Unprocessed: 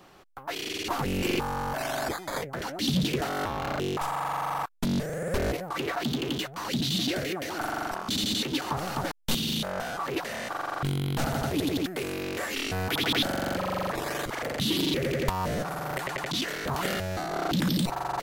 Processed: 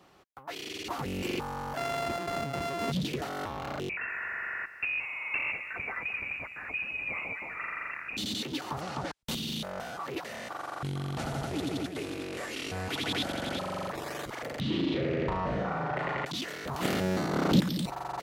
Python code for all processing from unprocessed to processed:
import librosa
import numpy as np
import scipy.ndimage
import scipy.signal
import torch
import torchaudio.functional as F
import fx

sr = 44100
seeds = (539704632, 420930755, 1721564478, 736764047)

y = fx.chain(x, sr, fx.sample_sort(block=64),
    fx.high_shelf(hz=4800.0, db=-9.0),
    fx.env_flatten(amount_pct=70), at=(1.77, 2.92))
y = fx.chain(y, sr, fx.freq_invert(carrier_hz=2700),
    fx.echo_crushed(ms=206, feedback_pct=35, bits=9, wet_db=-12), at=(3.89, 8.17))
y = fx.chain(y, sr, fx.law_mismatch(coded='mu'),
    fx.lowpass(hz=7500.0, slope=12), at=(8.81, 9.23))
y = fx.chain(y, sr, fx.cvsd(bps=64000),
    fx.echo_single(ms=365, db=-7.5), at=(10.58, 13.88))
y = fx.chain(y, sr, fx.lowpass(hz=2400.0, slope=12),
    fx.room_flutter(wall_m=6.3, rt60_s=0.52),
    fx.env_flatten(amount_pct=50), at=(14.6, 16.25))
y = fx.spec_clip(y, sr, under_db=14, at=(16.8, 17.59), fade=0.02)
y = fx.peak_eq(y, sr, hz=210.0, db=14.5, octaves=2.8, at=(16.8, 17.59), fade=0.02)
y = fx.doubler(y, sr, ms=27.0, db=-12.0, at=(16.8, 17.59), fade=0.02)
y = scipy.signal.sosfilt(scipy.signal.butter(2, 44.0, 'highpass', fs=sr, output='sos'), y)
y = fx.high_shelf(y, sr, hz=11000.0, db=-5.0)
y = fx.notch(y, sr, hz=1600.0, q=25.0)
y = F.gain(torch.from_numpy(y), -5.5).numpy()